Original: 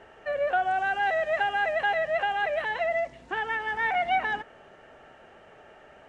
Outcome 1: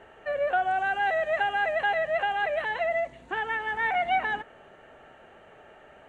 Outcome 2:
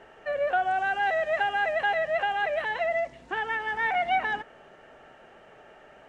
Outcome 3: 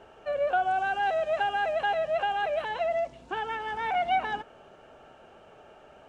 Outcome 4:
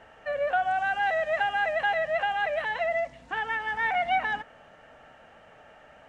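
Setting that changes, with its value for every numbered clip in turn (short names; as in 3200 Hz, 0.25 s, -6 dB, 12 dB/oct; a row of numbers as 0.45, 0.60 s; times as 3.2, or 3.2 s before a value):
bell, frequency: 5200, 81, 1900, 380 Hz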